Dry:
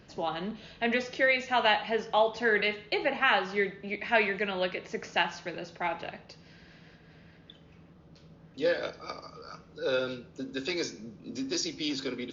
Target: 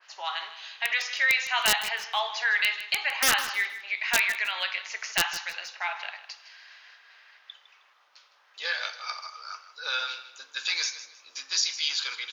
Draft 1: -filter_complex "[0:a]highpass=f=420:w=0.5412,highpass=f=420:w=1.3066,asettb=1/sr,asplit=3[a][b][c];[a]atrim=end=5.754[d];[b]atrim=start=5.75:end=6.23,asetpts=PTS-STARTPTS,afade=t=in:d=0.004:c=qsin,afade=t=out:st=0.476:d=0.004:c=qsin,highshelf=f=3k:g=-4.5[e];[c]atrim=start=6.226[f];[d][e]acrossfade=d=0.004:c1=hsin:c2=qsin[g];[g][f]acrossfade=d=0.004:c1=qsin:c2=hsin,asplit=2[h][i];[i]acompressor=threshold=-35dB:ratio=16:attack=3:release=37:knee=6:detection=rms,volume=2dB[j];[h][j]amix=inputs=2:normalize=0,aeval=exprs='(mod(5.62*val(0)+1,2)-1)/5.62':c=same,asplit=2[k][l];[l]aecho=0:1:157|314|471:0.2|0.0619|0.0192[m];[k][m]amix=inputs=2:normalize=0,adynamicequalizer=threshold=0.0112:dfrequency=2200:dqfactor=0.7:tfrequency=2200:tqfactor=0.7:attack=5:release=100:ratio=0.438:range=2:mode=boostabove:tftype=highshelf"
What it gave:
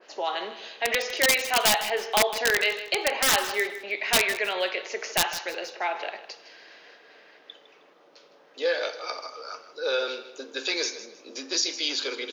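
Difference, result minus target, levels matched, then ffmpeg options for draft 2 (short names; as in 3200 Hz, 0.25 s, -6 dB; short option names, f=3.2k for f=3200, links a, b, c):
500 Hz band +13.0 dB
-filter_complex "[0:a]highpass=f=990:w=0.5412,highpass=f=990:w=1.3066,asettb=1/sr,asplit=3[a][b][c];[a]atrim=end=5.754[d];[b]atrim=start=5.75:end=6.23,asetpts=PTS-STARTPTS,afade=t=in:d=0.004:c=qsin,afade=t=out:st=0.476:d=0.004:c=qsin,highshelf=f=3k:g=-4.5[e];[c]atrim=start=6.226[f];[d][e]acrossfade=d=0.004:c1=hsin:c2=qsin[g];[g][f]acrossfade=d=0.004:c1=qsin:c2=hsin,asplit=2[h][i];[i]acompressor=threshold=-35dB:ratio=16:attack=3:release=37:knee=6:detection=rms,volume=2dB[j];[h][j]amix=inputs=2:normalize=0,aeval=exprs='(mod(5.62*val(0)+1,2)-1)/5.62':c=same,asplit=2[k][l];[l]aecho=0:1:157|314|471:0.2|0.0619|0.0192[m];[k][m]amix=inputs=2:normalize=0,adynamicequalizer=threshold=0.0112:dfrequency=2200:dqfactor=0.7:tfrequency=2200:tqfactor=0.7:attack=5:release=100:ratio=0.438:range=2:mode=boostabove:tftype=highshelf"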